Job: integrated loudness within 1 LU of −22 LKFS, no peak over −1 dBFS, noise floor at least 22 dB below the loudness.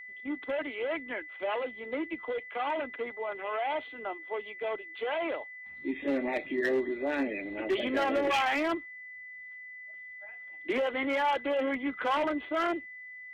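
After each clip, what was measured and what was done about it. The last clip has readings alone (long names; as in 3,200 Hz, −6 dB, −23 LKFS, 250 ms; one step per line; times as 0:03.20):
share of clipped samples 0.7%; peaks flattened at −22.5 dBFS; interfering tone 2,000 Hz; level of the tone −43 dBFS; integrated loudness −32.0 LKFS; sample peak −22.5 dBFS; target loudness −22.0 LKFS
→ clipped peaks rebuilt −22.5 dBFS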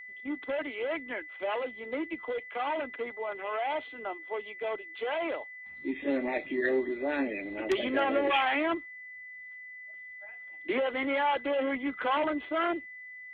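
share of clipped samples 0.0%; interfering tone 2,000 Hz; level of the tone −43 dBFS
→ notch filter 2,000 Hz, Q 30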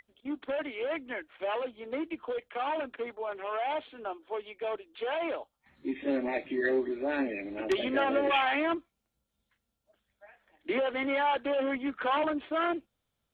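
interfering tone none found; integrated loudness −32.0 LKFS; sample peak −13.5 dBFS; target loudness −22.0 LKFS
→ level +10 dB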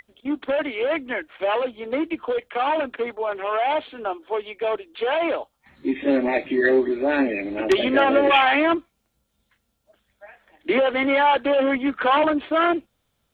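integrated loudness −22.0 LKFS; sample peak −3.5 dBFS; background noise floor −73 dBFS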